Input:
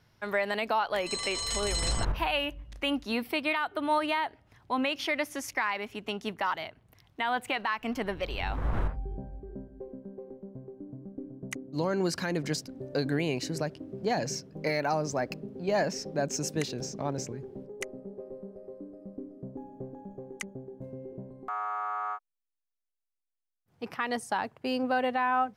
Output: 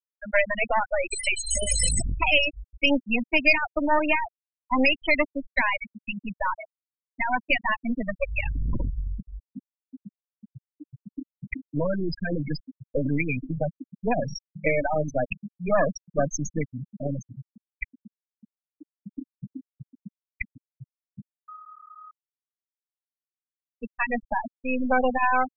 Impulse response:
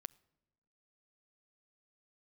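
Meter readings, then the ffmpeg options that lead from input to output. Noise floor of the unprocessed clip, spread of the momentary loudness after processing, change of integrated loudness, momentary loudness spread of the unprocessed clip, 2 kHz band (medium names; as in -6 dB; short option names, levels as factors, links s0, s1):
-85 dBFS, 18 LU, +5.5 dB, 15 LU, +7.5 dB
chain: -filter_complex "[0:a]equalizer=f=100:t=o:w=0.33:g=-4,equalizer=f=400:t=o:w=0.33:g=-9,equalizer=f=800:t=o:w=0.33:g=-6,equalizer=f=1250:t=o:w=0.33:g=-6,equalizer=f=2500:t=o:w=0.33:g=6,equalizer=f=4000:t=o:w=0.33:g=-7,equalizer=f=10000:t=o:w=0.33:g=11,aeval=exprs='0.188*(cos(1*acos(clip(val(0)/0.188,-1,1)))-cos(1*PI/2))+0.00266*(cos(3*acos(clip(val(0)/0.188,-1,1)))-cos(3*PI/2))+0.00211*(cos(5*acos(clip(val(0)/0.188,-1,1)))-cos(5*PI/2))+0.0335*(cos(6*acos(clip(val(0)/0.188,-1,1)))-cos(6*PI/2))+0.00168*(cos(7*acos(clip(val(0)/0.188,-1,1)))-cos(7*PI/2))':c=same,afftfilt=real='re*gte(hypot(re,im),0.0891)':imag='im*gte(hypot(re,im),0.0891)':win_size=1024:overlap=0.75,acrossover=split=260|2000[s0][s1][s2];[s0]asoftclip=type=tanh:threshold=0.0355[s3];[s3][s1][s2]amix=inputs=3:normalize=0,volume=2.66"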